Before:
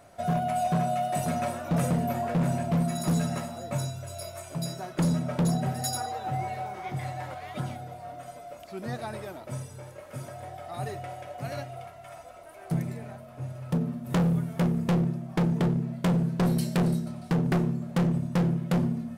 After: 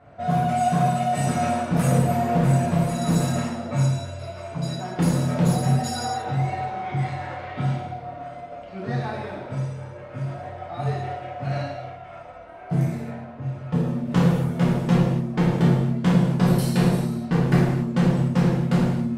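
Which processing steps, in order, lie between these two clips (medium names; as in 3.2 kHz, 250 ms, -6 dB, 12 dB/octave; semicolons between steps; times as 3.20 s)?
level-controlled noise filter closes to 2.1 kHz, open at -21.5 dBFS; gated-style reverb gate 310 ms falling, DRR -7 dB; trim -1.5 dB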